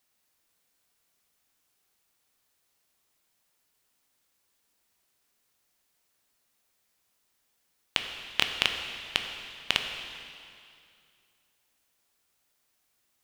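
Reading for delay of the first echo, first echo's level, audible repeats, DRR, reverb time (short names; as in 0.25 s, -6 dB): none, none, none, 4.0 dB, 2.4 s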